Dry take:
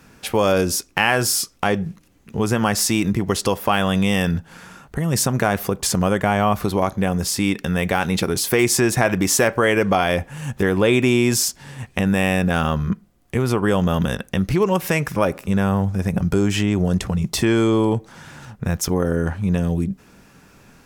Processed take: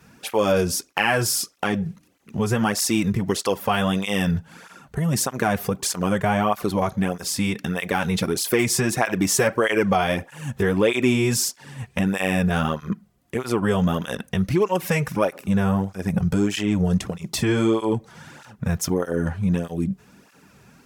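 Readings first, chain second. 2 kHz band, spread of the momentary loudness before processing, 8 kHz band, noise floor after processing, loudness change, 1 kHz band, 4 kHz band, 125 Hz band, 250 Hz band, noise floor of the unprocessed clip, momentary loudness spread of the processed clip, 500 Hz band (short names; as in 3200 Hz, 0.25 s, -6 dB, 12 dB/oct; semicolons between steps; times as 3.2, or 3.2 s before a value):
-3.0 dB, 8 LU, -3.0 dB, -57 dBFS, -3.0 dB, -2.5 dB, -3.0 dB, -3.0 dB, -2.5 dB, -52 dBFS, 8 LU, -3.0 dB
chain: tape flanging out of phase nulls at 1.6 Hz, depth 3.9 ms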